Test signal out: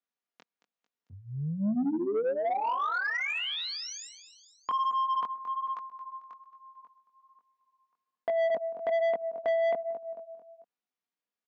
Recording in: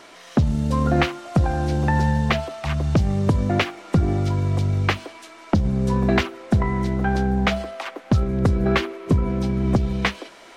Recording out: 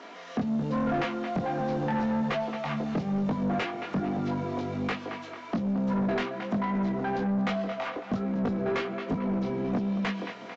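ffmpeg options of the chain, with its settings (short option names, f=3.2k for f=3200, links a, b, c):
-filter_complex "[0:a]highpass=f=170:w=0.5412,highpass=f=170:w=1.3066,aecho=1:1:4.2:0.38,aecho=1:1:223|446|669|892:0.168|0.0739|0.0325|0.0143,acrossover=split=6200[a][b];[b]acompressor=threshold=-49dB:ratio=4:attack=1:release=60[c];[a][c]amix=inputs=2:normalize=0,flanger=delay=19:depth=4.2:speed=1.2,asplit=2[d][e];[e]acompressor=threshold=-33dB:ratio=6,volume=-3dB[f];[d][f]amix=inputs=2:normalize=0,asoftclip=type=tanh:threshold=-23.5dB,aemphasis=mode=reproduction:type=75fm,aresample=16000,aresample=44100,volume=-1dB"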